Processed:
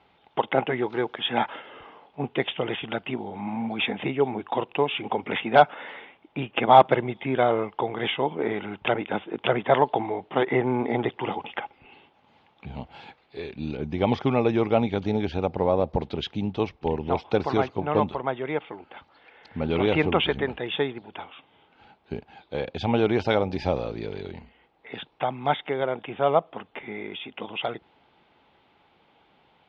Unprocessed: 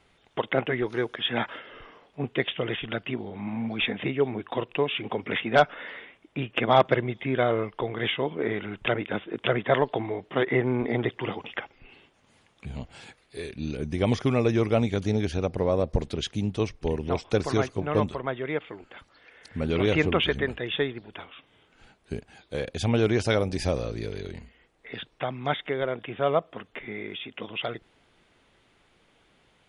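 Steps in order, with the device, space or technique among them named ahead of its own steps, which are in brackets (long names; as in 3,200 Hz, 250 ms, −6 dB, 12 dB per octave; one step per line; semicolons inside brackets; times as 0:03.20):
guitar cabinet (loudspeaker in its box 76–4,000 Hz, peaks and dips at 110 Hz −5 dB, 840 Hz +10 dB, 1,800 Hz −4 dB)
level +1 dB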